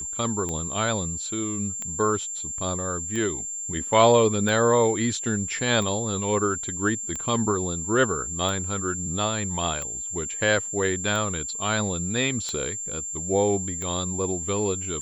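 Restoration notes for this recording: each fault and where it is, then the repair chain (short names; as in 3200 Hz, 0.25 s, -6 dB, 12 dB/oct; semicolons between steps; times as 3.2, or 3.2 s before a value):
tick 45 rpm -18 dBFS
tone 7300 Hz -30 dBFS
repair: de-click; notch 7300 Hz, Q 30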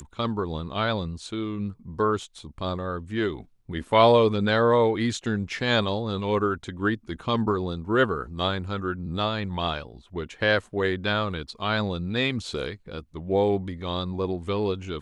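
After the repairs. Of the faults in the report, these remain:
none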